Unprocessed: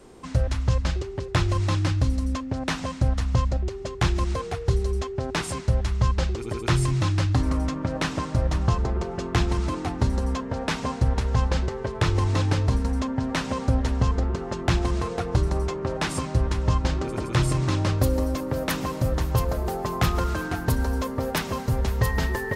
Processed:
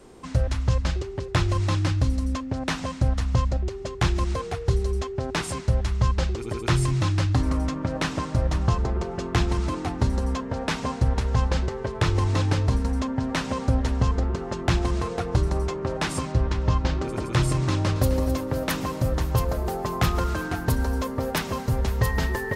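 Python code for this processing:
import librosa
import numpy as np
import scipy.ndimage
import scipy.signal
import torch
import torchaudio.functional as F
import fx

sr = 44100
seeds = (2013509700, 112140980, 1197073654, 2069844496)

y = fx.lowpass(x, sr, hz=5900.0, slope=12, at=(16.32, 17.02))
y = fx.echo_throw(y, sr, start_s=17.69, length_s=0.42, ms=260, feedback_pct=45, wet_db=-11.5)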